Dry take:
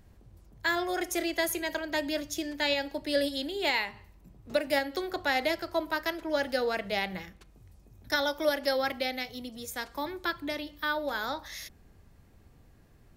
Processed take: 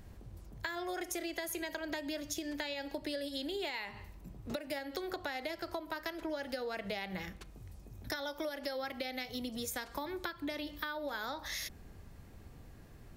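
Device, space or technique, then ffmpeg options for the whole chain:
serial compression, peaks first: -af "acompressor=threshold=0.0158:ratio=6,acompressor=threshold=0.00891:ratio=3,volume=1.68"

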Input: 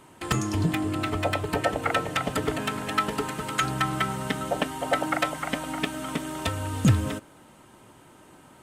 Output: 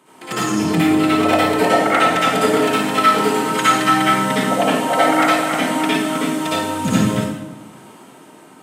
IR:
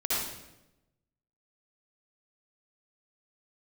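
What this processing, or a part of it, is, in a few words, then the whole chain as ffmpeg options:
far laptop microphone: -filter_complex "[1:a]atrim=start_sample=2205[s0];[0:a][s0]afir=irnorm=-1:irlink=0,highpass=f=160:w=0.5412,highpass=f=160:w=1.3066,dynaudnorm=f=170:g=9:m=3.76,volume=0.891"

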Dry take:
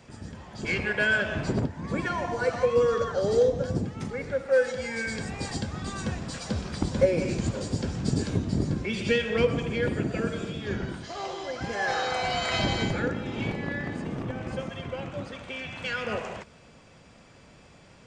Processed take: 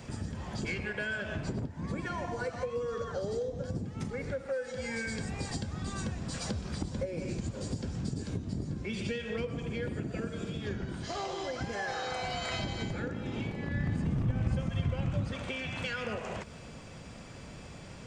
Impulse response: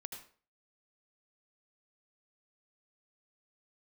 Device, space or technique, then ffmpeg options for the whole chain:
ASMR close-microphone chain: -filter_complex "[0:a]lowshelf=f=250:g=6,acompressor=threshold=0.0141:ratio=6,highshelf=f=7300:g=6,asplit=3[s0][s1][s2];[s0]afade=t=out:st=13.68:d=0.02[s3];[s1]asubboost=boost=3.5:cutoff=180,afade=t=in:st=13.68:d=0.02,afade=t=out:st=15.32:d=0.02[s4];[s2]afade=t=in:st=15.32:d=0.02[s5];[s3][s4][s5]amix=inputs=3:normalize=0,volume=1.5"

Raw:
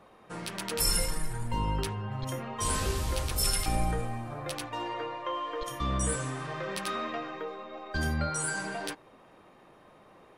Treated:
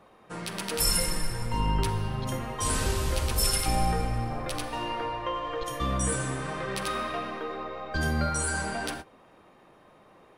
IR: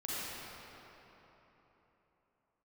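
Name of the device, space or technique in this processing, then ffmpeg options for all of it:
keyed gated reverb: -filter_complex "[0:a]asplit=3[s0][s1][s2];[1:a]atrim=start_sample=2205[s3];[s1][s3]afir=irnorm=-1:irlink=0[s4];[s2]apad=whole_len=457684[s5];[s4][s5]sidechaingate=range=0.0224:threshold=0.00562:ratio=16:detection=peak,volume=0.447[s6];[s0][s6]amix=inputs=2:normalize=0"

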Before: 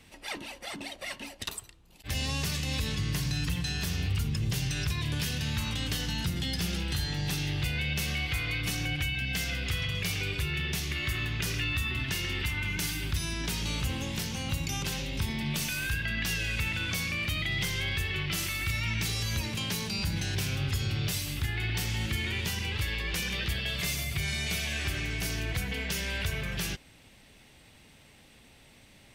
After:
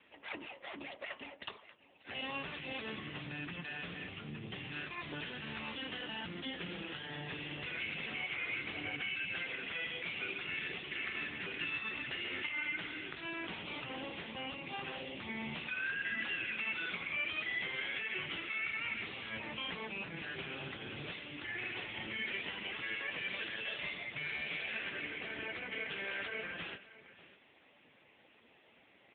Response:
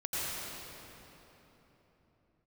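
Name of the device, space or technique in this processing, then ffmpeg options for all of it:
satellite phone: -af "highpass=320,lowpass=3200,aecho=1:1:593:0.141" -ar 8000 -c:a libopencore_amrnb -b:a 6700

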